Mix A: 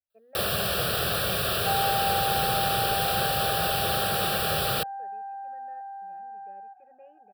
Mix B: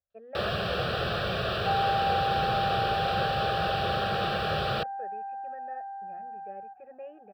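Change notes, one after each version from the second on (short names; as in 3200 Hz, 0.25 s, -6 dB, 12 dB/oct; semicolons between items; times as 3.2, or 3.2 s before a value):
speech +9.5 dB; first sound: add air absorption 200 m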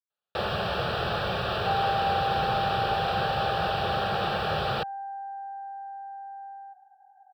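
speech: muted; first sound: add bell 890 Hz +13 dB 0.29 oct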